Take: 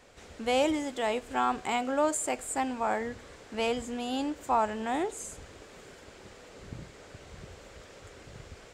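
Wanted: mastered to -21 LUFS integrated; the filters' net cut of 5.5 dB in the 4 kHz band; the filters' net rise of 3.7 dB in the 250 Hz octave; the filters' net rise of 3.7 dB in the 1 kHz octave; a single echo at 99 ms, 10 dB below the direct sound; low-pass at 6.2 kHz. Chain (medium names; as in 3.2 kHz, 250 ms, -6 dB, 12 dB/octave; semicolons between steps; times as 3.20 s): low-pass 6.2 kHz; peaking EQ 250 Hz +4 dB; peaking EQ 1 kHz +5 dB; peaking EQ 4 kHz -8.5 dB; delay 99 ms -10 dB; trim +6.5 dB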